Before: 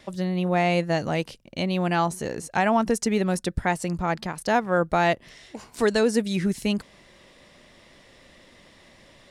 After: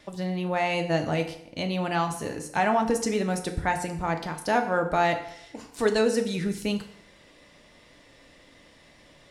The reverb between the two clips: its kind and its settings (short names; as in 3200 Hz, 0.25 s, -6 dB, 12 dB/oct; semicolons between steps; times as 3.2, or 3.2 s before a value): FDN reverb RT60 0.72 s, low-frequency decay 0.9×, high-frequency decay 0.85×, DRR 4.5 dB; gain -3 dB